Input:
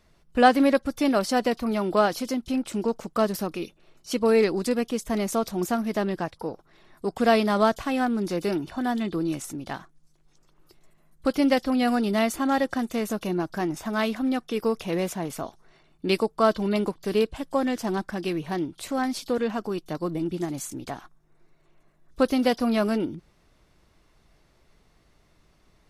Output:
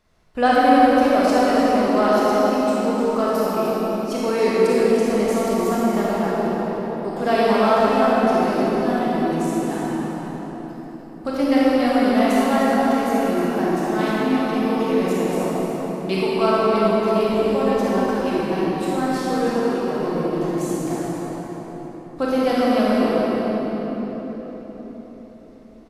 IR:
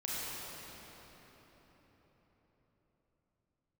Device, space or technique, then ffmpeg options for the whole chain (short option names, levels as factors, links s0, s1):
cave: -filter_complex "[0:a]asettb=1/sr,asplit=3[s0][s1][s2];[s0]atrim=end=1.884[s3];[s1]atrim=start=1.88:end=2.64,asetpts=PTS-STARTPTS,afade=t=in:d=0.004:c=qsin,afade=t=out:st=0.756:d=0.004:c=qsin,highpass=260[s4];[s2]atrim=start=2.636[s5];[s3][s4]acrossfade=d=0.004:c1=hsin:c2=qsin[s6];[s6][s5]acrossfade=d=0.004:c1=qsin:c2=hsin,aecho=1:1:302:0.355[s7];[1:a]atrim=start_sample=2205[s8];[s7][s8]afir=irnorm=-1:irlink=0,equalizer=f=790:t=o:w=2.1:g=3.5,volume=0.891"